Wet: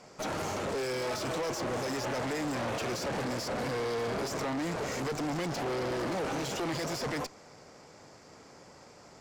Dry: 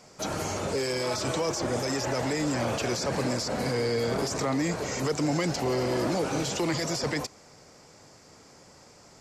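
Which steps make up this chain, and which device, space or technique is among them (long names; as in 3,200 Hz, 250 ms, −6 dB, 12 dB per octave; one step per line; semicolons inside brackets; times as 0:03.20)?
tube preamp driven hard (tube saturation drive 36 dB, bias 0.75; low-shelf EQ 170 Hz −5.5 dB; high-shelf EQ 4,100 Hz −9 dB)
level +6.5 dB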